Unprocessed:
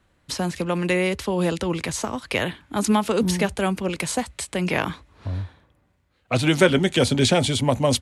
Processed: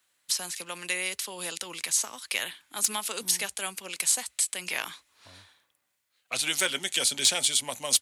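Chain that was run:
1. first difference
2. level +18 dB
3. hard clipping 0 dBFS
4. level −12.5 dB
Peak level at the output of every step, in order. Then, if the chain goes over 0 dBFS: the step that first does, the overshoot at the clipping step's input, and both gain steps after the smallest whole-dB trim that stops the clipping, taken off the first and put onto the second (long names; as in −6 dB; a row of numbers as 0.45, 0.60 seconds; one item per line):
−9.5, +8.5, 0.0, −12.5 dBFS
step 2, 8.5 dB
step 2 +9 dB, step 4 −3.5 dB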